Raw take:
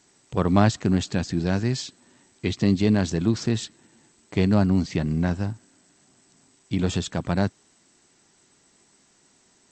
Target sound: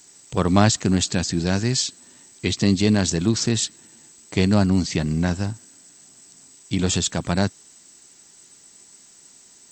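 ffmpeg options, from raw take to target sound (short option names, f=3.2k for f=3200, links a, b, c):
-af "aemphasis=mode=production:type=75fm,volume=2.5dB"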